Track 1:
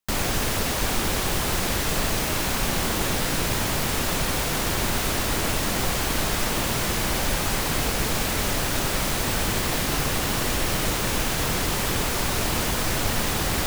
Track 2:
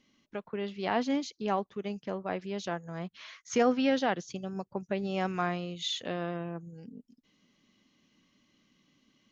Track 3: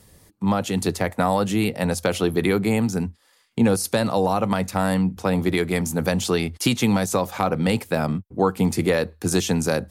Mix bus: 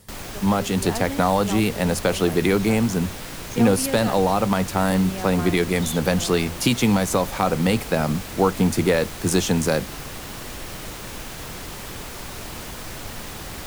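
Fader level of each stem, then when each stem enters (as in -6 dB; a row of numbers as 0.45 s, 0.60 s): -10.0 dB, -2.5 dB, +1.0 dB; 0.00 s, 0.00 s, 0.00 s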